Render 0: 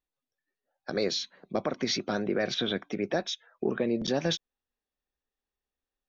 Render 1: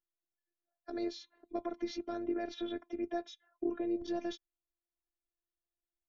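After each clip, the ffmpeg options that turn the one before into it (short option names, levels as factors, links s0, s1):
-af "afftfilt=real='hypot(re,im)*cos(PI*b)':imag='0':win_size=512:overlap=0.75,tiltshelf=f=1200:g=6.5,volume=0.376"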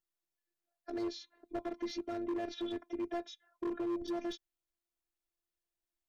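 -af "volume=44.7,asoftclip=hard,volume=0.0224,volume=1.12"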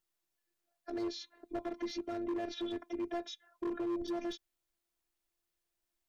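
-af "alimiter=level_in=4.47:limit=0.0631:level=0:latency=1:release=46,volume=0.224,volume=1.78"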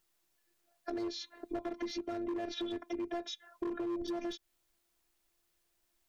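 -af "acompressor=threshold=0.00562:ratio=4,volume=2.66"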